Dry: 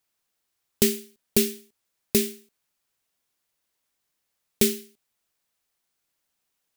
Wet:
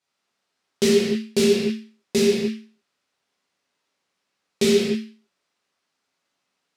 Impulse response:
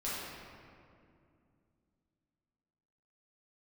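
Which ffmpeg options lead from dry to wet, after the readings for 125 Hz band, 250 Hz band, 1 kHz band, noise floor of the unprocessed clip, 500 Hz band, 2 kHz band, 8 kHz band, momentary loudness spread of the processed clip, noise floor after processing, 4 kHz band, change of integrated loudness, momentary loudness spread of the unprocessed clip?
+5.5 dB, +7.0 dB, +8.0 dB, -79 dBFS, +9.5 dB, +7.0 dB, -1.5 dB, 10 LU, -78 dBFS, +5.0 dB, +3.5 dB, 12 LU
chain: -filter_complex "[0:a]highpass=150,lowpass=6.1k[a];[1:a]atrim=start_sample=2205,afade=t=out:st=0.38:d=0.01,atrim=end_sample=17199[b];[a][b]afir=irnorm=-1:irlink=0,volume=3.5dB"

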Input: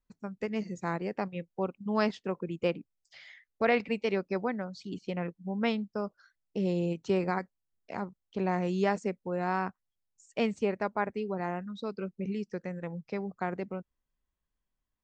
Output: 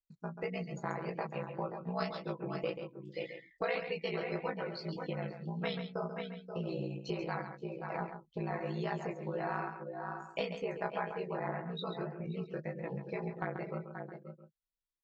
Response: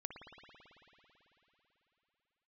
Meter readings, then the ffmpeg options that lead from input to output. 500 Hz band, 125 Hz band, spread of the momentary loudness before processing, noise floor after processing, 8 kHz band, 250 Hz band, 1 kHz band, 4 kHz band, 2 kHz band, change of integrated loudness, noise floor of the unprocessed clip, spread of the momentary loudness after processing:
-5.5 dB, -2.5 dB, 10 LU, -76 dBFS, n/a, -8.0 dB, -5.0 dB, -2.0 dB, -4.5 dB, -6.0 dB, -85 dBFS, 6 LU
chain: -filter_complex "[0:a]flanger=delay=19.5:depth=5.1:speed=1.8,aeval=exprs='val(0)*sin(2*PI*30*n/s)':c=same,aecho=1:1:6.1:0.49,asplit=2[a][b];[b]aecho=0:1:529:0.282[c];[a][c]amix=inputs=2:normalize=0,afftdn=nr=18:nf=-52,acompressor=threshold=-39dB:ratio=4,equalizer=f=100:t=o:w=0.67:g=-8,equalizer=f=250:t=o:w=0.67:g=-10,equalizer=f=4k:t=o:w=0.67:g=10,acontrast=78,asplit=2[d][e];[e]aecho=0:1:136:0.355[f];[d][f]amix=inputs=2:normalize=0,adynamicequalizer=threshold=0.00251:dfrequency=1900:dqfactor=0.7:tfrequency=1900:tqfactor=0.7:attack=5:release=100:ratio=0.375:range=2:mode=cutabove:tftype=highshelf"

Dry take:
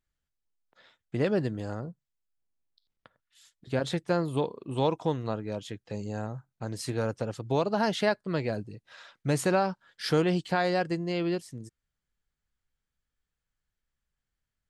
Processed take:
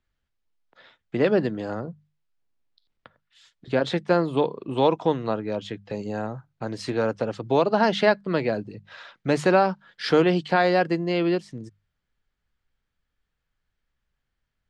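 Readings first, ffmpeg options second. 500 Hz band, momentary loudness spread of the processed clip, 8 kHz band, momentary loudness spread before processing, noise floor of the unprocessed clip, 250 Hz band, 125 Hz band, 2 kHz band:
+7.0 dB, 14 LU, n/a, 13 LU, under -85 dBFS, +5.5 dB, +1.0 dB, +7.0 dB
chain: -filter_complex "[0:a]lowpass=4.2k,bandreject=f=50:t=h:w=6,bandreject=f=100:t=h:w=6,bandreject=f=150:t=h:w=6,bandreject=f=200:t=h:w=6,acrossover=split=170|1300[a][b][c];[a]acompressor=threshold=-48dB:ratio=6[d];[d][b][c]amix=inputs=3:normalize=0,volume=7dB"

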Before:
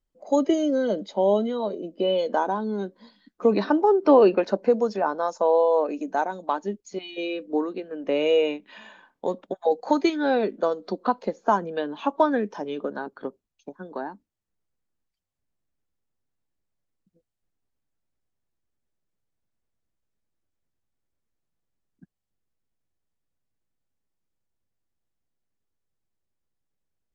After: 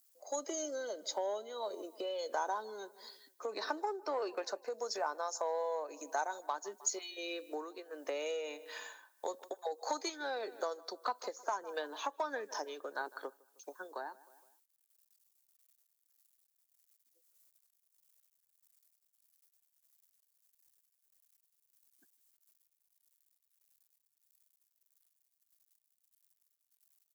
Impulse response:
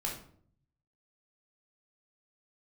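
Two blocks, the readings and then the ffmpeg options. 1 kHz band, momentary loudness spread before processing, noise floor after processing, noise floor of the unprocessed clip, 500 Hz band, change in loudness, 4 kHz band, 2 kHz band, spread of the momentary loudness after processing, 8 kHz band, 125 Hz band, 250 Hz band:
-12.5 dB, 14 LU, -82 dBFS, -82 dBFS, -17.0 dB, -15.5 dB, -7.5 dB, -8.5 dB, 10 LU, n/a, under -35 dB, -24.0 dB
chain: -filter_complex "[0:a]asplit=2[a][b];[b]adelay=155,lowpass=f=3.8k:p=1,volume=-23dB,asplit=2[c][d];[d]adelay=155,lowpass=f=3.8k:p=1,volume=0.51,asplit=2[e][f];[f]adelay=155,lowpass=f=3.8k:p=1,volume=0.51[g];[a][c][e][g]amix=inputs=4:normalize=0,asplit=2[h][i];[i]acontrast=70,volume=3dB[j];[h][j]amix=inputs=2:normalize=0,equalizer=f=2.9k:w=1.3:g=-14,acrusher=bits=11:mix=0:aa=0.000001,tremolo=f=1.6:d=0.53,acompressor=threshold=-18dB:ratio=4,highpass=f=320:w=0.5412,highpass=f=320:w=1.3066,aderivative,volume=5dB"

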